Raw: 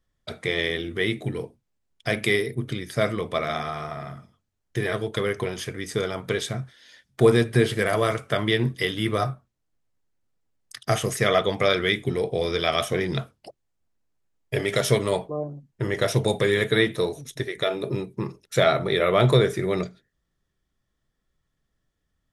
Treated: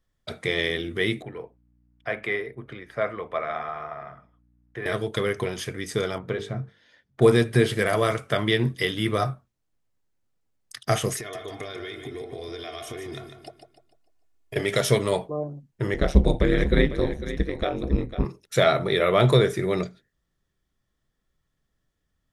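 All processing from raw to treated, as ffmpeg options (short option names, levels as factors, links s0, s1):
-filter_complex "[0:a]asettb=1/sr,asplit=3[s0][s1][s2];[s0]atrim=end=1.224[s3];[s1]atrim=start=1.22:end=4.86,asetpts=PTS-STARTPTS,afade=t=in:d=0.004:c=qsin,afade=t=out:st=3.636:d=0.004:c=qsin,aeval=exprs='val(0)+0.00355*(sin(2*PI*60*n/s)+sin(2*PI*2*60*n/s)/2+sin(2*PI*3*60*n/s)/3+sin(2*PI*4*60*n/s)/4+sin(2*PI*5*60*n/s)/5)':c=same,acrossover=split=480 2300:gain=0.224 1 0.0708[s4][s5][s6];[s4][s5][s6]amix=inputs=3:normalize=0[s7];[s2]atrim=start=4.856[s8];[s3][s7]acrossfade=d=0.004:c1=hsin:c2=qsin[s9];[s9][s8]acrossfade=d=0.004:c1=qsin:c2=hsin,asettb=1/sr,asplit=3[s10][s11][s12];[s10]atrim=end=6.184[s13];[s11]atrim=start=6.18:end=7.22,asetpts=PTS-STARTPTS,afade=t=in:d=0.004:c=qsin,afade=t=out:st=1.036:d=0.004:c=qsin,lowpass=f=1100:p=1,bandreject=f=50:t=h:w=6,bandreject=f=100:t=h:w=6,bandreject=f=150:t=h:w=6,bandreject=f=200:t=h:w=6,bandreject=f=250:t=h:w=6,bandreject=f=300:t=h:w=6,bandreject=f=350:t=h:w=6,bandreject=f=400:t=h:w=6,bandreject=f=450:t=h:w=6[s14];[s12]atrim=start=7.216[s15];[s13][s14]acrossfade=d=0.004:c1=hsin:c2=qsin[s16];[s16][s15]acrossfade=d=0.004:c1=qsin:c2=hsin,asettb=1/sr,asplit=3[s17][s18][s19];[s17]atrim=end=11.184[s20];[s18]atrim=start=11.18:end=14.56,asetpts=PTS-STARTPTS,afade=t=in:d=0.004:c=qsin,afade=t=out:st=3.376:d=0.004:c=qsin,aecho=1:1:2.8:0.78,atrim=end_sample=149058,acompressor=threshold=0.0251:ratio=16:attack=3.2:release=140:knee=1:detection=peak,aecho=1:1:149|298|447|596|745:0.398|0.159|0.0637|0.0255|0.0102,atrim=end_sample=149058[s21];[s19]atrim=start=14.556[s22];[s20][s21]acrossfade=d=0.004:c1=hsin:c2=qsin[s23];[s23][s22]acrossfade=d=0.004:c1=qsin:c2=hsin,asettb=1/sr,asplit=3[s24][s25][s26];[s24]atrim=end=15.944[s27];[s25]atrim=start=15.94:end=18.25,asetpts=PTS-STARTPTS,afade=t=in:d=0.004:c=qsin,afade=t=out:st=2.306:d=0.004:c=qsin,aeval=exprs='val(0)*sin(2*PI*70*n/s)':c=same,aemphasis=mode=reproduction:type=bsi,aecho=1:1:500:0.251,atrim=end_sample=101871[s28];[s26]atrim=start=18.246[s29];[s27][s28]acrossfade=d=0.004:c1=hsin:c2=qsin[s30];[s30][s29]acrossfade=d=0.004:c1=qsin:c2=hsin"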